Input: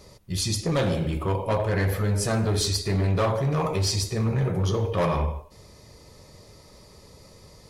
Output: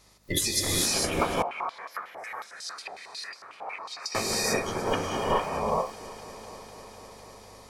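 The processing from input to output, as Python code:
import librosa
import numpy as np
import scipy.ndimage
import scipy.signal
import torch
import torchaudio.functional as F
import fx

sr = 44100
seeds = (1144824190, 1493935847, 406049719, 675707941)

y = fx.spec_clip(x, sr, under_db=21)
y = fx.noise_reduce_blind(y, sr, reduce_db=20)
y = fx.over_compress(y, sr, threshold_db=-32.0, ratio=-0.5)
y = fx.add_hum(y, sr, base_hz=50, snr_db=32)
y = fx.echo_heads(y, sr, ms=250, heads='all three', feedback_pct=70, wet_db=-23.5)
y = fx.rev_gated(y, sr, seeds[0], gate_ms=480, shape='rising', drr_db=-2.5)
y = fx.filter_held_bandpass(y, sr, hz=11.0, low_hz=760.0, high_hz=4900.0, at=(1.42, 4.15))
y = y * librosa.db_to_amplitude(1.5)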